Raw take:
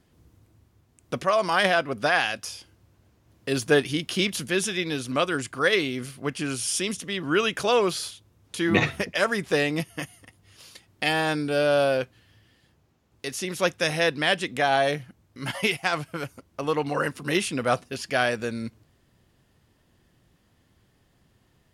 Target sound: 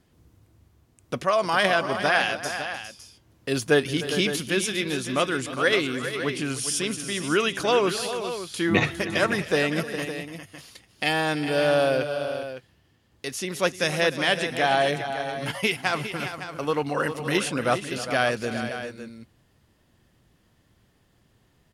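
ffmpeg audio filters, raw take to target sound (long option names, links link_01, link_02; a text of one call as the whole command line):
ffmpeg -i in.wav -af "aecho=1:1:303|406|559:0.168|0.299|0.266" out.wav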